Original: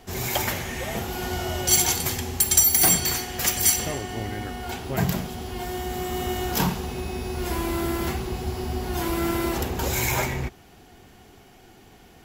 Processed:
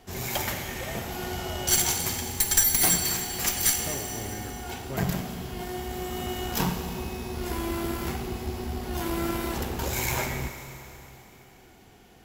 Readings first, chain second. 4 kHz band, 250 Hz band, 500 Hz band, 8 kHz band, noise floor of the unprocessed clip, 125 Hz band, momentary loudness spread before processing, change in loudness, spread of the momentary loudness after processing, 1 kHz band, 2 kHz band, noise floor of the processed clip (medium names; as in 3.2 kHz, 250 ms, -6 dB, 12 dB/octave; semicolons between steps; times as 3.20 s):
-3.0 dB, -3.5 dB, -4.0 dB, -3.5 dB, -51 dBFS, -4.0 dB, 14 LU, -3.5 dB, 14 LU, -4.0 dB, -3.0 dB, -53 dBFS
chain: Chebyshev shaper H 4 -11 dB, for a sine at -1.5 dBFS; Schroeder reverb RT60 3.3 s, combs from 30 ms, DRR 7 dB; trim -4.5 dB